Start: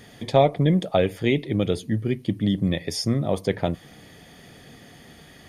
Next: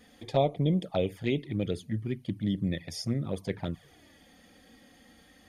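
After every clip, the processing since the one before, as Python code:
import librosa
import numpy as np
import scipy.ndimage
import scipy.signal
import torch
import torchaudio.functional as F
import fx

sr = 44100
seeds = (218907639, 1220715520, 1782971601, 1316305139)

y = fx.env_flanger(x, sr, rest_ms=4.2, full_db=-16.0)
y = y * 10.0 ** (-6.5 / 20.0)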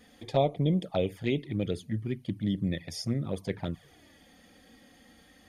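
y = x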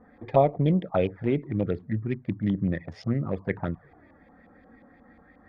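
y = fx.wiener(x, sr, points=15)
y = fx.filter_lfo_lowpass(y, sr, shape='saw_up', hz=5.6, low_hz=970.0, high_hz=2800.0, q=2.5)
y = y * 10.0 ** (3.5 / 20.0)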